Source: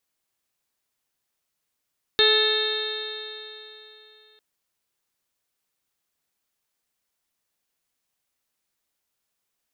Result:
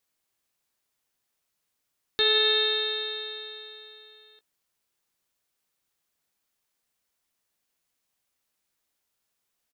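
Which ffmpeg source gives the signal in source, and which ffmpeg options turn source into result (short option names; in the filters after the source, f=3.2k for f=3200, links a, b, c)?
-f lavfi -i "aevalsrc='0.1*pow(10,-3*t/3.21)*sin(2*PI*428.49*t)+0.02*pow(10,-3*t/3.21)*sin(2*PI*859.93*t)+0.0299*pow(10,-3*t/3.21)*sin(2*PI*1297.22*t)+0.0708*pow(10,-3*t/3.21)*sin(2*PI*1743.22*t)+0.0224*pow(10,-3*t/3.21)*sin(2*PI*2200.67*t)+0.0316*pow(10,-3*t/3.21)*sin(2*PI*2672.2*t)+0.0266*pow(10,-3*t/3.21)*sin(2*PI*3160.32*t)+0.141*pow(10,-3*t/3.21)*sin(2*PI*3667.36*t)+0.0708*pow(10,-3*t/3.21)*sin(2*PI*4195.5*t)':d=2.2:s=44100"
-filter_complex "[0:a]alimiter=limit=-14dB:level=0:latency=1:release=50,asplit=2[a][b];[b]adelay=18,volume=-13.5dB[c];[a][c]amix=inputs=2:normalize=0"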